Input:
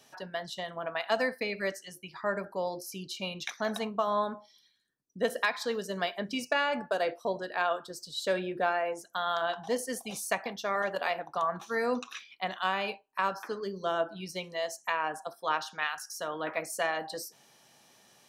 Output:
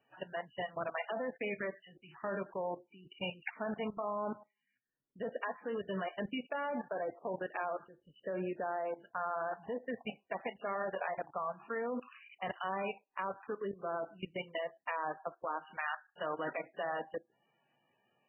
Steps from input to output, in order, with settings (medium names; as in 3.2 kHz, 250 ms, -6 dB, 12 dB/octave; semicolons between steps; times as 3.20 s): low-pass that closes with the level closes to 1.1 kHz, closed at -25 dBFS; level held to a coarse grid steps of 19 dB; trim +2 dB; MP3 8 kbps 16 kHz